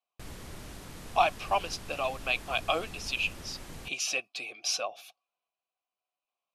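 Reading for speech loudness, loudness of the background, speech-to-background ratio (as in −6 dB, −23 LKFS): −31.5 LKFS, −45.5 LKFS, 14.0 dB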